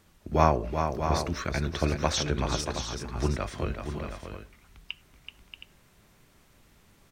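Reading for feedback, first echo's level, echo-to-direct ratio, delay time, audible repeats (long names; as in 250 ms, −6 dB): repeats not evenly spaced, −7.0 dB, −3.5 dB, 380 ms, 3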